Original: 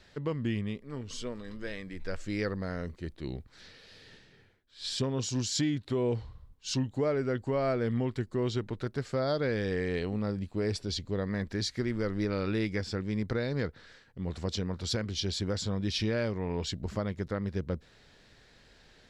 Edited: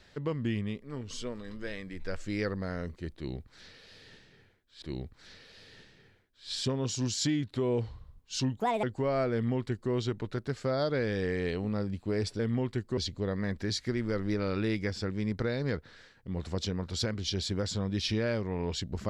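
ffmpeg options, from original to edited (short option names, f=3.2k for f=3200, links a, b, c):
-filter_complex "[0:a]asplit=6[a][b][c][d][e][f];[a]atrim=end=4.822[g];[b]atrim=start=3.158:end=6.944[h];[c]atrim=start=6.94:end=7.32,asetpts=PTS-STARTPTS,asetrate=71883,aresample=44100[i];[d]atrim=start=7.316:end=10.882[j];[e]atrim=start=7.818:end=8.402[k];[f]atrim=start=10.878[l];[g][h]acrossfade=d=0.004:c1=hsin:c2=hsin[m];[m][i]acrossfade=d=0.004:c1=hsin:c2=hsin[n];[n][j]acrossfade=d=0.004:c1=hsin:c2=hsin[o];[o][k]acrossfade=d=0.004:c1=hsin:c2=hsin[p];[p][l]acrossfade=d=0.004:c1=hsin:c2=hsin"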